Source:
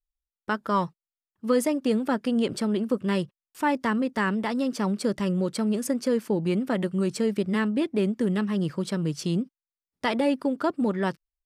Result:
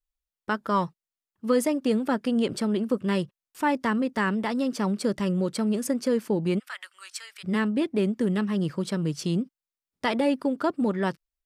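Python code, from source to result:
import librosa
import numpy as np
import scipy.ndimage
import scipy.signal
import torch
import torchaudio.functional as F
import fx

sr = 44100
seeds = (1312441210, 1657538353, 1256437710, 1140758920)

y = fx.highpass(x, sr, hz=1300.0, slope=24, at=(6.58, 7.43), fade=0.02)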